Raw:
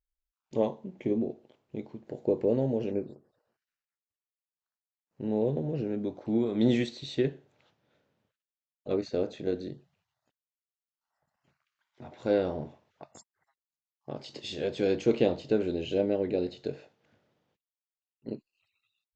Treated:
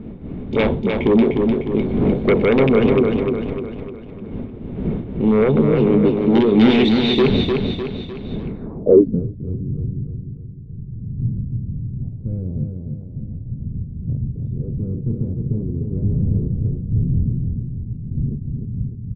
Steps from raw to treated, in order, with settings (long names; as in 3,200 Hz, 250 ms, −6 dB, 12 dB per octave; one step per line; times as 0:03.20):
loose part that buzzes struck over −26 dBFS, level −26 dBFS
wind on the microphone 180 Hz −39 dBFS
in parallel at −10.5 dB: sine wavefolder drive 16 dB, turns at −10.5 dBFS
on the sum: hollow resonant body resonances 230/400/2,200/3,600 Hz, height 9 dB, ringing for 20 ms
on a send: repeating echo 302 ms, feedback 48%, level −4.5 dB
on the sum: low-pass filter sweep 3,100 Hz → 120 Hz, 0:08.44–0:09.27
level −1.5 dB